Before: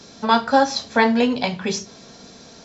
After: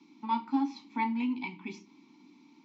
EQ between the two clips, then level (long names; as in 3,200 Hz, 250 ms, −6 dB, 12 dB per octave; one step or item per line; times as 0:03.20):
formant filter u
high-pass filter 150 Hz 12 dB per octave
flat-topped bell 580 Hz −13 dB 1.1 octaves
0.0 dB